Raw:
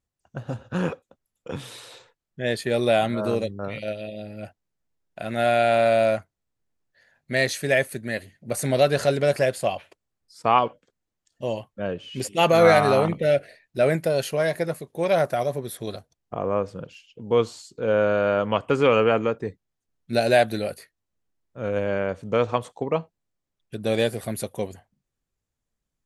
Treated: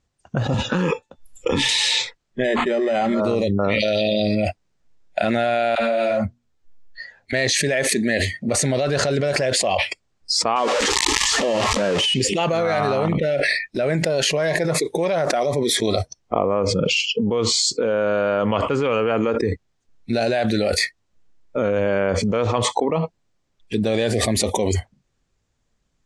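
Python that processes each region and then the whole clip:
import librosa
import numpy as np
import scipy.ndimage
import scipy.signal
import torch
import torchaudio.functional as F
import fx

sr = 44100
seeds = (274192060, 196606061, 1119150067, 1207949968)

y = fx.chain(x, sr, fx.comb_fb(f0_hz=880.0, decay_s=0.27, harmonics='all', damping=0.0, mix_pct=60),
    fx.band_squash(depth_pct=100), at=(0.54, 1.69))
y = fx.chain(y, sr, fx.hum_notches(base_hz=60, count=5),
    fx.comb(ms=5.2, depth=0.51),
    fx.resample_linear(factor=8), at=(2.44, 3.2))
y = fx.chain(y, sr, fx.band_shelf(hz=4900.0, db=9.5, octaves=1.2),
    fx.sustainer(db_per_s=24.0), at=(3.8, 4.35))
y = fx.chain(y, sr, fx.hum_notches(base_hz=60, count=4),
    fx.dispersion(late='lows', ms=52.0, hz=650.0),
    fx.ensemble(), at=(5.75, 7.33))
y = fx.chain(y, sr, fx.zero_step(step_db=-27.5),
    fx.highpass(hz=190.0, slope=6),
    fx.high_shelf(hz=10000.0, db=2.0), at=(10.56, 12.14))
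y = fx.noise_reduce_blind(y, sr, reduce_db=20)
y = scipy.signal.sosfilt(scipy.signal.butter(4, 7500.0, 'lowpass', fs=sr, output='sos'), y)
y = fx.env_flatten(y, sr, amount_pct=100)
y = y * librosa.db_to_amplitude(-7.5)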